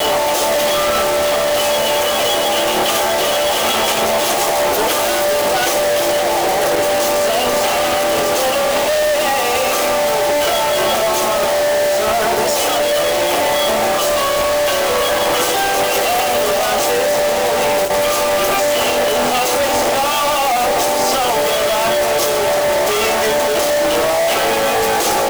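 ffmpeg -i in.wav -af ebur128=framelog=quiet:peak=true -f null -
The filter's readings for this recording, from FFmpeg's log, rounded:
Integrated loudness:
  I:         -14.8 LUFS
  Threshold: -24.8 LUFS
Loudness range:
  LRA:         0.3 LU
  Threshold: -34.8 LUFS
  LRA low:   -14.9 LUFS
  LRA high:  -14.7 LUFS
True peak:
  Peak:       -9.3 dBFS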